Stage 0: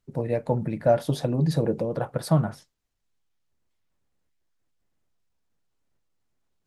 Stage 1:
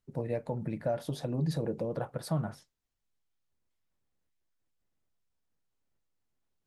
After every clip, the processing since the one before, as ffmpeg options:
ffmpeg -i in.wav -af "alimiter=limit=-15.5dB:level=0:latency=1:release=164,volume=-6dB" out.wav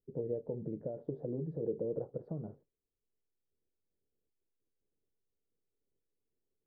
ffmpeg -i in.wav -af "acompressor=threshold=-32dB:ratio=6,lowpass=frequency=430:width_type=q:width=4.3,volume=-6dB" out.wav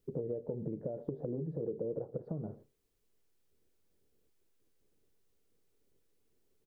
ffmpeg -i in.wav -filter_complex "[0:a]acompressor=threshold=-50dB:ratio=3,asplit=2[link_01][link_02];[link_02]adelay=116.6,volume=-21dB,highshelf=frequency=4000:gain=-2.62[link_03];[link_01][link_03]amix=inputs=2:normalize=0,volume=11.5dB" out.wav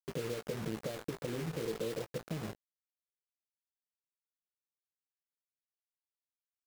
ffmpeg -i in.wav -filter_complex "[0:a]acrusher=bits=6:mix=0:aa=0.000001,asplit=2[link_01][link_02];[link_02]adelay=18,volume=-11dB[link_03];[link_01][link_03]amix=inputs=2:normalize=0,volume=-1dB" out.wav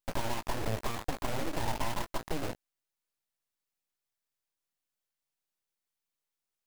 ffmpeg -i in.wav -af "aeval=exprs='abs(val(0))':channel_layout=same,volume=7dB" out.wav

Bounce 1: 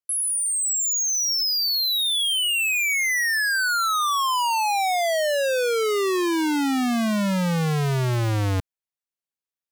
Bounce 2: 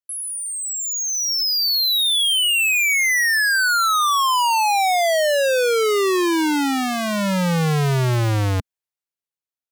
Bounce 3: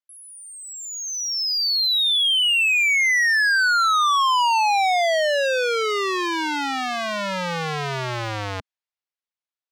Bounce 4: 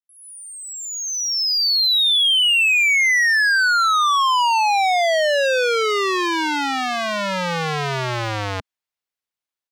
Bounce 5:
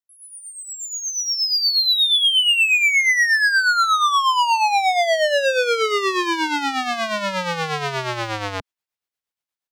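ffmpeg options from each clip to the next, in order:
ffmpeg -i in.wav -af "equalizer=frequency=230:width=4.3:gain=-9.5,dynaudnorm=framelen=280:gausssize=9:maxgain=8.5dB,volume=-4dB" out.wav
ffmpeg -i in.wav -filter_complex "[0:a]acrossover=split=510 6000:gain=0.224 1 0.126[link_01][link_02][link_03];[link_01][link_02][link_03]amix=inputs=3:normalize=0" out.wav
ffmpeg -i in.wav -af "dynaudnorm=framelen=140:gausssize=3:maxgain=12dB,volume=-8.5dB" out.wav
ffmpeg -i in.wav -filter_complex "[0:a]tremolo=f=8.4:d=0.58,acrossover=split=230|940[link_01][link_02][link_03];[link_01]asoftclip=type=tanh:threshold=-35.5dB[link_04];[link_04][link_02][link_03]amix=inputs=3:normalize=0,volume=2dB" out.wav

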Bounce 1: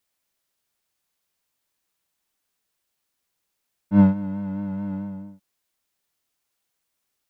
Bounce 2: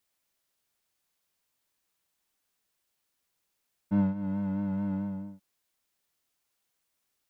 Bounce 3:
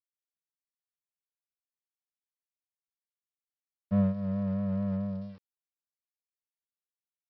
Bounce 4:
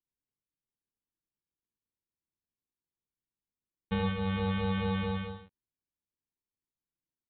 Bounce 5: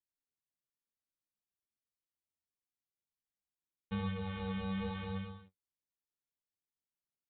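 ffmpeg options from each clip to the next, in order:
ffmpeg -i in.wav -af "acompressor=threshold=-24dB:ratio=3,volume=-1.5dB" out.wav
ffmpeg -i in.wav -af "aecho=1:1:1.7:0.99,aresample=11025,aeval=exprs='val(0)*gte(abs(val(0)),0.00211)':channel_layout=same,aresample=44100" out.wav
ffmpeg -i in.wav -af "acompressor=threshold=-28dB:ratio=6,aresample=8000,acrusher=samples=12:mix=1:aa=0.000001,aresample=44100,aecho=1:1:72.89|110.8:0.447|0.447" out.wav
ffmpeg -i in.wav -af "flanger=delay=9.6:depth=6.2:regen=47:speed=0.75:shape=sinusoidal,volume=-4dB" out.wav

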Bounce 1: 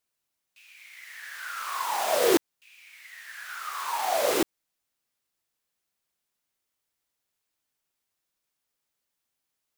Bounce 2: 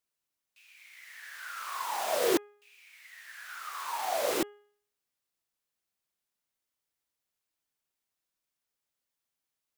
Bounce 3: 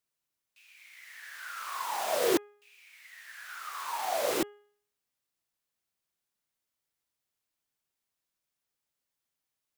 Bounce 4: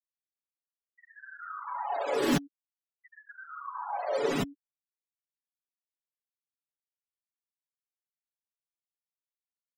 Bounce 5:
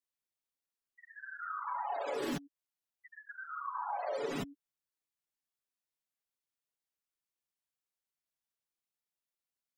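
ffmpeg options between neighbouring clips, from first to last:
ffmpeg -i in.wav -af "bandreject=frequency=412.4:width_type=h:width=4,bandreject=frequency=824.8:width_type=h:width=4,bandreject=frequency=1237.2:width_type=h:width=4,bandreject=frequency=1649.6:width_type=h:width=4,bandreject=frequency=2062:width_type=h:width=4,bandreject=frequency=2474.4:width_type=h:width=4,bandreject=frequency=2886.8:width_type=h:width=4,bandreject=frequency=3299.2:width_type=h:width=4,volume=-5dB" out.wav
ffmpeg -i in.wav -af "equalizer=frequency=120:width_type=o:width=1.2:gain=3" out.wav
ffmpeg -i in.wav -af "afreqshift=-130,afftfilt=real='re*gte(hypot(re,im),0.02)':imag='im*gte(hypot(re,im),0.02)':win_size=1024:overlap=0.75,aecho=1:1:7.1:0.76" out.wav
ffmpeg -i in.wav -af "acompressor=threshold=-35dB:ratio=6,volume=1dB" out.wav

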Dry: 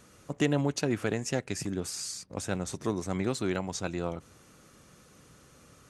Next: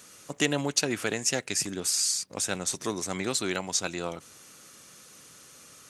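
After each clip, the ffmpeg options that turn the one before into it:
ffmpeg -i in.wav -af "highpass=frequency=210:poles=1,highshelf=frequency=2100:gain=12" out.wav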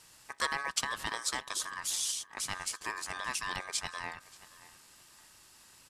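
ffmpeg -i in.wav -filter_complex "[0:a]asplit=2[link_01][link_02];[link_02]adelay=579,lowpass=frequency=3900:poles=1,volume=-18.5dB,asplit=2[link_03][link_04];[link_04]adelay=579,lowpass=frequency=3900:poles=1,volume=0.29[link_05];[link_01][link_03][link_05]amix=inputs=3:normalize=0,aeval=exprs='val(0)*sin(2*PI*1400*n/s)':channel_layout=same,volume=-4dB" out.wav

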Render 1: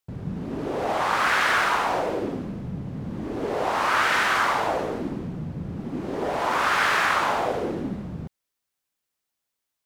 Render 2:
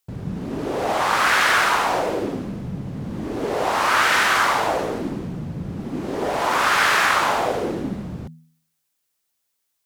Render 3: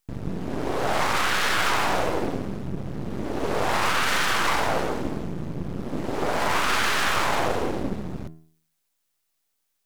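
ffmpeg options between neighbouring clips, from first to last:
ffmpeg -i in.wav -af "highshelf=frequency=4200:gain=6.5,bandreject=frequency=80.27:width_type=h:width=4,bandreject=frequency=160.54:width_type=h:width=4,bandreject=frequency=240.81:width_type=h:width=4,volume=3dB" out.wav
ffmpeg -i in.wav -af "alimiter=limit=-13dB:level=0:latency=1:release=13,aeval=exprs='max(val(0),0)':channel_layout=same,volume=2.5dB" out.wav

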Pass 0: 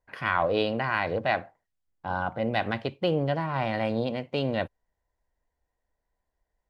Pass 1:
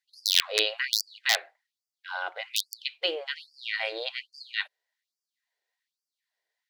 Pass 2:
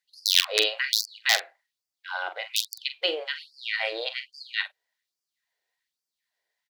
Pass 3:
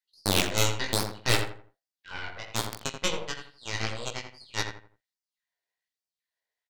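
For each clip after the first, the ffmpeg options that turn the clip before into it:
ffmpeg -i in.wav -af "aeval=exprs='(mod(4.73*val(0)+1,2)-1)/4.73':channel_layout=same,equalizer=frequency=125:width_type=o:width=1:gain=10,equalizer=frequency=250:width_type=o:width=1:gain=-5,equalizer=frequency=500:width_type=o:width=1:gain=-4,equalizer=frequency=1000:width_type=o:width=1:gain=-7,equalizer=frequency=2000:width_type=o:width=1:gain=6,equalizer=frequency=4000:width_type=o:width=1:gain=10,afftfilt=real='re*gte(b*sr/1024,330*pow(4600/330,0.5+0.5*sin(2*PI*1.2*pts/sr)))':imag='im*gte(b*sr/1024,330*pow(4600/330,0.5+0.5*sin(2*PI*1.2*pts/sr)))':win_size=1024:overlap=0.75" out.wav
ffmpeg -i in.wav -filter_complex "[0:a]asplit=2[link_01][link_02];[link_02]adelay=44,volume=-11dB[link_03];[link_01][link_03]amix=inputs=2:normalize=0,volume=2dB" out.wav
ffmpeg -i in.wav -filter_complex "[0:a]aeval=exprs='0.891*(cos(1*acos(clip(val(0)/0.891,-1,1)))-cos(1*PI/2))+0.398*(cos(8*acos(clip(val(0)/0.891,-1,1)))-cos(8*PI/2))':channel_layout=same,flanger=delay=16.5:depth=3.9:speed=1.5,asplit=2[link_01][link_02];[link_02]adelay=83,lowpass=frequency=1800:poles=1,volume=-5.5dB,asplit=2[link_03][link_04];[link_04]adelay=83,lowpass=frequency=1800:poles=1,volume=0.33,asplit=2[link_05][link_06];[link_06]adelay=83,lowpass=frequency=1800:poles=1,volume=0.33,asplit=2[link_07][link_08];[link_08]adelay=83,lowpass=frequency=1800:poles=1,volume=0.33[link_09];[link_03][link_05][link_07][link_09]amix=inputs=4:normalize=0[link_10];[link_01][link_10]amix=inputs=2:normalize=0,volume=-5dB" out.wav

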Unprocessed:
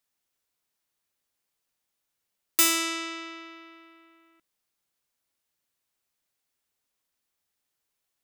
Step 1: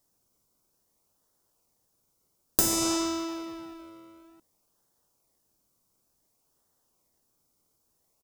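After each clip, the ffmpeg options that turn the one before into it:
ffmpeg -i in.wav -filter_complex "[0:a]firequalizer=gain_entry='entry(1100,0);entry(1700,-20);entry(5300,0)':delay=0.05:min_phase=1,asplit=2[link_01][link_02];[link_02]acrusher=samples=34:mix=1:aa=0.000001:lfo=1:lforange=34:lforate=0.56,volume=-9dB[link_03];[link_01][link_03]amix=inputs=2:normalize=0,acompressor=threshold=-29dB:ratio=6,volume=8dB" out.wav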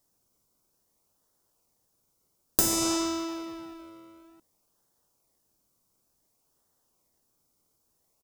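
ffmpeg -i in.wav -af anull out.wav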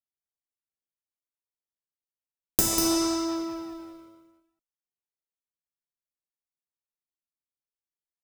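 ffmpeg -i in.wav -filter_complex "[0:a]agate=range=-33dB:threshold=-45dB:ratio=3:detection=peak,aphaser=in_gain=1:out_gain=1:delay=2.8:decay=0.33:speed=1.2:type=sinusoidal,asplit=2[link_01][link_02];[link_02]aecho=0:1:194:0.473[link_03];[link_01][link_03]amix=inputs=2:normalize=0" out.wav

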